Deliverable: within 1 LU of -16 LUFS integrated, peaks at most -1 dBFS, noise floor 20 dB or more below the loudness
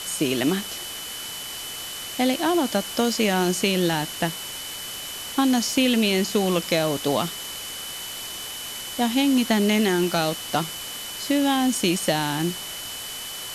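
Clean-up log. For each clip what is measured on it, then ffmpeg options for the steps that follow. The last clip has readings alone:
steady tone 3000 Hz; tone level -36 dBFS; noise floor -34 dBFS; noise floor target -44 dBFS; loudness -24.0 LUFS; peak -9.0 dBFS; loudness target -16.0 LUFS
-> -af "bandreject=f=3k:w=30"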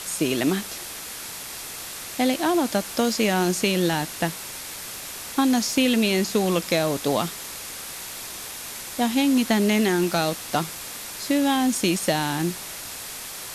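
steady tone none; noise floor -36 dBFS; noise floor target -45 dBFS
-> -af "afftdn=nr=9:nf=-36"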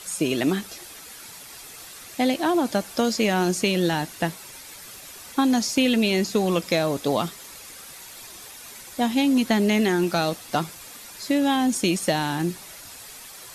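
noise floor -43 dBFS; loudness -23.0 LUFS; peak -9.0 dBFS; loudness target -16.0 LUFS
-> -af "volume=7dB"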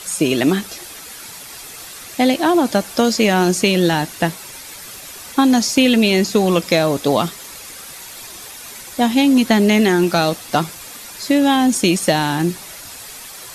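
loudness -16.0 LUFS; peak -2.0 dBFS; noise floor -36 dBFS

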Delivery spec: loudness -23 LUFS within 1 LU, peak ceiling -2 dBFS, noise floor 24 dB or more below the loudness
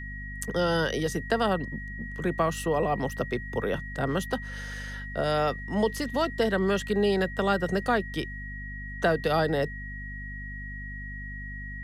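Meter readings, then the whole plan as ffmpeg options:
hum 50 Hz; harmonics up to 250 Hz; hum level -37 dBFS; steady tone 1900 Hz; tone level -39 dBFS; loudness -29.0 LUFS; peak -12.5 dBFS; loudness target -23.0 LUFS
-> -af "bandreject=f=50:t=h:w=6,bandreject=f=100:t=h:w=6,bandreject=f=150:t=h:w=6,bandreject=f=200:t=h:w=6,bandreject=f=250:t=h:w=6"
-af "bandreject=f=1.9k:w=30"
-af "volume=6dB"

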